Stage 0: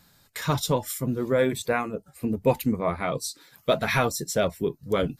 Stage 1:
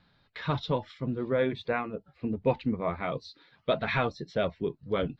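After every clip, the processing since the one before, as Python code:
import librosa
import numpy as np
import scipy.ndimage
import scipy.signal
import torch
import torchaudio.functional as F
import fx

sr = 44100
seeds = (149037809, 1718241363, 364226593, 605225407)

y = scipy.signal.sosfilt(scipy.signal.butter(6, 4100.0, 'lowpass', fs=sr, output='sos'), x)
y = y * librosa.db_to_amplitude(-4.5)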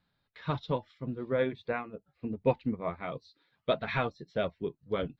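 y = fx.upward_expand(x, sr, threshold_db=-44.0, expansion=1.5)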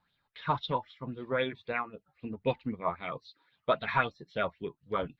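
y = fx.bell_lfo(x, sr, hz=3.8, low_hz=870.0, high_hz=3600.0, db=15)
y = y * librosa.db_to_amplitude(-3.5)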